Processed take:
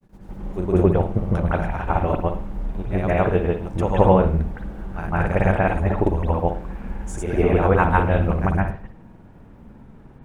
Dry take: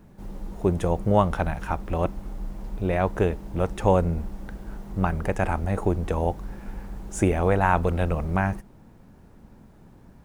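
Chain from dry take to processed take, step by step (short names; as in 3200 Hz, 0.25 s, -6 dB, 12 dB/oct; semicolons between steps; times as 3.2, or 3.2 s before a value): grains, pitch spread up and down by 0 st; reverb, pre-delay 0.158 s, DRR -9 dB; gain -3.5 dB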